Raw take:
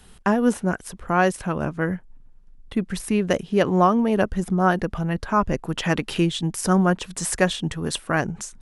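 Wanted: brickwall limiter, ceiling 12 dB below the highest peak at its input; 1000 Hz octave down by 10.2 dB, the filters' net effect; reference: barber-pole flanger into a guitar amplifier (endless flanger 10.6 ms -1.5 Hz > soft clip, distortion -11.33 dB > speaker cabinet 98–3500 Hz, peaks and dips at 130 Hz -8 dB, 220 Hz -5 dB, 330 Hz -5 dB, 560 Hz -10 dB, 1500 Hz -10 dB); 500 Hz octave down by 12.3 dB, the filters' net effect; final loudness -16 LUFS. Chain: bell 500 Hz -8 dB; bell 1000 Hz -7.5 dB; limiter -20 dBFS; endless flanger 10.6 ms -1.5 Hz; soft clip -29.5 dBFS; speaker cabinet 98–3500 Hz, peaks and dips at 130 Hz -8 dB, 220 Hz -5 dB, 330 Hz -5 dB, 560 Hz -10 dB, 1500 Hz -10 dB; gain +24.5 dB

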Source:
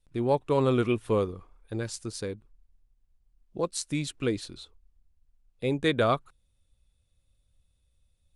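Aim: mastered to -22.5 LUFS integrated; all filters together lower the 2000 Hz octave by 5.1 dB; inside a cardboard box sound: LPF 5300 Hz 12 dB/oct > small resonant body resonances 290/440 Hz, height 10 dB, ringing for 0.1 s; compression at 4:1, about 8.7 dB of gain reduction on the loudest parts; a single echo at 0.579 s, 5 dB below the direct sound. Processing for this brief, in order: bell 2000 Hz -6.5 dB; compressor 4:1, threshold -31 dBFS; LPF 5300 Hz 12 dB/oct; echo 0.579 s -5 dB; small resonant body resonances 290/440 Hz, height 10 dB, ringing for 0.1 s; gain +11 dB

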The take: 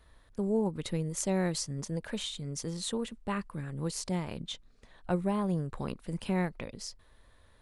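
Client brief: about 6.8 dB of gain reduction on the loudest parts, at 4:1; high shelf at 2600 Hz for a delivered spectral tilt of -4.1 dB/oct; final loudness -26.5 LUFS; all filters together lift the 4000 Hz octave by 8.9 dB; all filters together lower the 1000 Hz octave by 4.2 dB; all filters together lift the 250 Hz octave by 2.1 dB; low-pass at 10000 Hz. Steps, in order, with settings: LPF 10000 Hz; bell 250 Hz +3.5 dB; bell 1000 Hz -6.5 dB; high shelf 2600 Hz +3 dB; bell 4000 Hz +8.5 dB; compressor 4:1, threshold -31 dBFS; gain +9 dB

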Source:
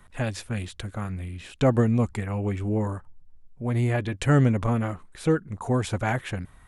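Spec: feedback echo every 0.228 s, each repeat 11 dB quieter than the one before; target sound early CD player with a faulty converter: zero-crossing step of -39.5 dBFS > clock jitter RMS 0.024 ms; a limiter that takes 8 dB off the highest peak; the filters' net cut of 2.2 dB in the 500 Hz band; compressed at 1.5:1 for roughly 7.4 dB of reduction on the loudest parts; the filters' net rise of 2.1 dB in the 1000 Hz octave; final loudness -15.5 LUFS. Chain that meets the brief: bell 500 Hz -3.5 dB; bell 1000 Hz +4 dB; compressor 1.5:1, threshold -36 dBFS; limiter -23.5 dBFS; feedback echo 0.228 s, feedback 28%, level -11 dB; zero-crossing step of -39.5 dBFS; clock jitter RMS 0.024 ms; gain +17.5 dB

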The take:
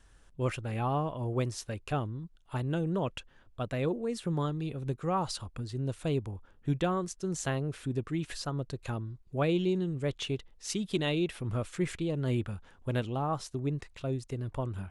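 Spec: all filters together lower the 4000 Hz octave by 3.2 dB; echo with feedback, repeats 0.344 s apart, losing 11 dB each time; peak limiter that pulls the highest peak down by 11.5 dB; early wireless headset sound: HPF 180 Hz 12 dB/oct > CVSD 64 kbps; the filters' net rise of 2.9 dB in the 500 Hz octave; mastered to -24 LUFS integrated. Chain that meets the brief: bell 500 Hz +4 dB; bell 4000 Hz -4.5 dB; limiter -27.5 dBFS; HPF 180 Hz 12 dB/oct; feedback echo 0.344 s, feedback 28%, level -11 dB; CVSD 64 kbps; gain +14.5 dB

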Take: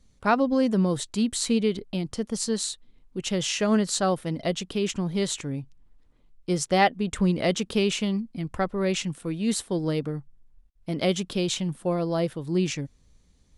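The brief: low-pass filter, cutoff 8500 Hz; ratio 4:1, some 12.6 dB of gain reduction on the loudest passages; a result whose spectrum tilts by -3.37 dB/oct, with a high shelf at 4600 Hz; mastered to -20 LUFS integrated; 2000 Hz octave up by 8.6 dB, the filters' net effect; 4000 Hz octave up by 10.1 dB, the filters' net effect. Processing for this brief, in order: LPF 8500 Hz; bell 2000 Hz +7 dB; bell 4000 Hz +7 dB; high shelf 4600 Hz +7.5 dB; compressor 4:1, threshold -25 dBFS; gain +8.5 dB

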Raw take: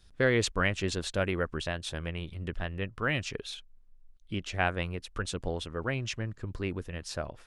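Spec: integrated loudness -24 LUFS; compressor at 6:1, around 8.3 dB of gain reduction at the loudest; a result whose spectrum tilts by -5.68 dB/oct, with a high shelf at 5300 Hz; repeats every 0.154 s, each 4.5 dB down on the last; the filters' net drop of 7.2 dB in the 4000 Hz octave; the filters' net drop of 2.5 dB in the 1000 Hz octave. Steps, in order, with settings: bell 1000 Hz -3 dB; bell 4000 Hz -7 dB; high shelf 5300 Hz -6 dB; compressor 6:1, threshold -31 dBFS; feedback echo 0.154 s, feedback 60%, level -4.5 dB; gain +12.5 dB

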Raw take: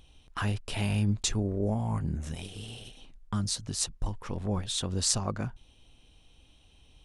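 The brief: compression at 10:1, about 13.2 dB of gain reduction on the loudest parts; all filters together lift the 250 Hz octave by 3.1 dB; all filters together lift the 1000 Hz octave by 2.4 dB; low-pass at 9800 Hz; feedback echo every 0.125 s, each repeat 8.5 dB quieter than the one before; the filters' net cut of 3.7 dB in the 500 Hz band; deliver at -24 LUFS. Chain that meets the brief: LPF 9800 Hz; bell 250 Hz +5.5 dB; bell 500 Hz -8 dB; bell 1000 Hz +5 dB; compressor 10:1, threshold -35 dBFS; feedback echo 0.125 s, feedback 38%, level -8.5 dB; gain +15.5 dB

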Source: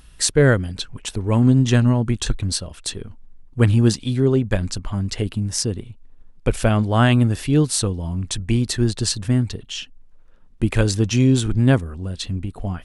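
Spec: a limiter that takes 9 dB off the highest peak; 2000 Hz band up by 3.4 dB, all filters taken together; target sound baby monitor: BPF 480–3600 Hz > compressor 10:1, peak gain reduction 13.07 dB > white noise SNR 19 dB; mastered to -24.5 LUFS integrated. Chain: bell 2000 Hz +5 dB; limiter -11.5 dBFS; BPF 480–3600 Hz; compressor 10:1, threshold -31 dBFS; white noise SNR 19 dB; gain +12 dB

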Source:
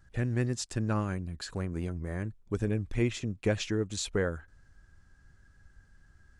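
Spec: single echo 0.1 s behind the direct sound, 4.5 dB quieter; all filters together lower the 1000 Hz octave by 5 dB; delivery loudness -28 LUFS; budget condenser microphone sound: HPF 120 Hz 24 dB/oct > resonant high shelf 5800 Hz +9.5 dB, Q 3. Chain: HPF 120 Hz 24 dB/oct; bell 1000 Hz -6.5 dB; resonant high shelf 5800 Hz +9.5 dB, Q 3; echo 0.1 s -4.5 dB; gain +1.5 dB

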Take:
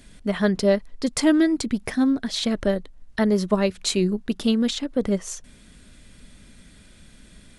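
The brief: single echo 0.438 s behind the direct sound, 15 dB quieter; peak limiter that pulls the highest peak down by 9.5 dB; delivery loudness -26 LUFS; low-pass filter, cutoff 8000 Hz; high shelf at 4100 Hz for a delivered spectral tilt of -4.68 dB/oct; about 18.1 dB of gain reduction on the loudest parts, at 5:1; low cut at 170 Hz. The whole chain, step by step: HPF 170 Hz; LPF 8000 Hz; high shelf 4100 Hz -8 dB; compressor 5:1, threshold -36 dBFS; limiter -31 dBFS; echo 0.438 s -15 dB; gain +14.5 dB

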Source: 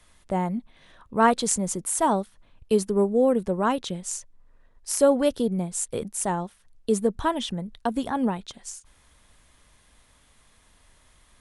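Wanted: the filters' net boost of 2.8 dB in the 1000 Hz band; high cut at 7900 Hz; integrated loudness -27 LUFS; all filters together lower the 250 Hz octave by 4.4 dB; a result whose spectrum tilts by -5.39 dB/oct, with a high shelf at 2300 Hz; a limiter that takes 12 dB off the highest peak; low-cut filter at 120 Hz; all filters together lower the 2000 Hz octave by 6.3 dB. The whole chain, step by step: HPF 120 Hz; LPF 7900 Hz; bell 250 Hz -5 dB; bell 1000 Hz +6.5 dB; bell 2000 Hz -8.5 dB; high shelf 2300 Hz -7 dB; gain +4 dB; limiter -15.5 dBFS

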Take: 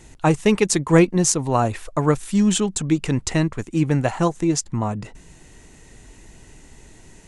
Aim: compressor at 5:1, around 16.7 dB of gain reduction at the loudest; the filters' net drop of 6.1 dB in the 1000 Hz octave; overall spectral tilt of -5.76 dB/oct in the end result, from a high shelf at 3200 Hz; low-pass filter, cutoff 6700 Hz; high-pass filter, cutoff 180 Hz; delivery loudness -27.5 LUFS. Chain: HPF 180 Hz; LPF 6700 Hz; bell 1000 Hz -7.5 dB; high shelf 3200 Hz -8 dB; compressor 5:1, threshold -32 dBFS; gain +8.5 dB

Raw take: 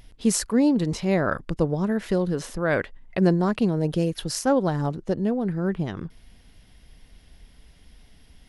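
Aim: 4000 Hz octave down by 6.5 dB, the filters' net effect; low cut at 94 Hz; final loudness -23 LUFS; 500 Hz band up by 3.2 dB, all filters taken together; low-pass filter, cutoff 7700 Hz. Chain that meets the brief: HPF 94 Hz; LPF 7700 Hz; bell 500 Hz +4 dB; bell 4000 Hz -8.5 dB

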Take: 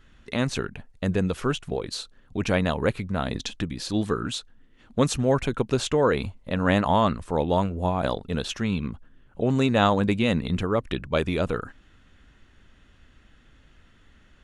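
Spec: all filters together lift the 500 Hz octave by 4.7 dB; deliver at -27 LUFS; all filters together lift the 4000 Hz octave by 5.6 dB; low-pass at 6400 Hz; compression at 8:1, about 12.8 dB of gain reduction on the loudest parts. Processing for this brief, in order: LPF 6400 Hz; bell 500 Hz +5.5 dB; bell 4000 Hz +7 dB; compressor 8:1, threshold -27 dBFS; gain +5.5 dB

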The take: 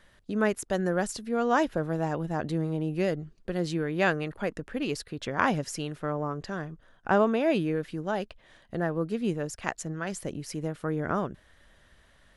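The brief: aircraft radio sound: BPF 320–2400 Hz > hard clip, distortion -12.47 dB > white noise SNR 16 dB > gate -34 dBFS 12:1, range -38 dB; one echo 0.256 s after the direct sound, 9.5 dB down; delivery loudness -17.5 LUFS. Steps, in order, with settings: BPF 320–2400 Hz; echo 0.256 s -9.5 dB; hard clip -21 dBFS; white noise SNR 16 dB; gate -34 dBFS 12:1, range -38 dB; gain +15 dB

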